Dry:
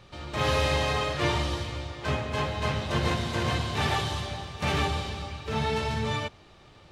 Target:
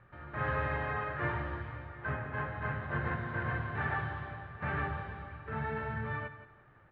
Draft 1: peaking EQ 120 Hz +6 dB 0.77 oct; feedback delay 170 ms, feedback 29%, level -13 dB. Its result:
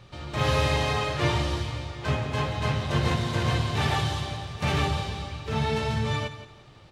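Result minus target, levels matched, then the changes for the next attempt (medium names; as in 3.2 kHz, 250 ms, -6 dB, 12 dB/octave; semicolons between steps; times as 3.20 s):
2 kHz band -5.5 dB
add first: four-pole ladder low-pass 1.8 kHz, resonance 65%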